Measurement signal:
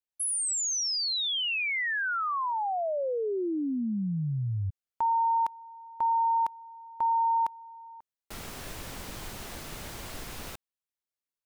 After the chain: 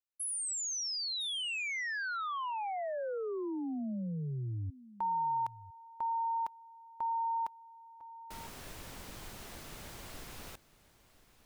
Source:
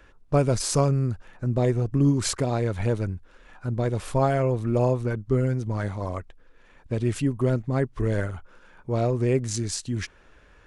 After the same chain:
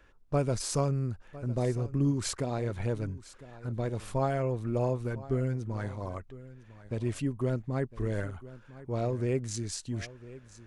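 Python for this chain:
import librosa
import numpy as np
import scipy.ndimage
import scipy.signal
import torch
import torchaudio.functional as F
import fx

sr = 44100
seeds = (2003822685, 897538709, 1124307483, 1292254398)

y = x + 10.0 ** (-17.5 / 20.0) * np.pad(x, (int(1005 * sr / 1000.0), 0))[:len(x)]
y = y * librosa.db_to_amplitude(-7.0)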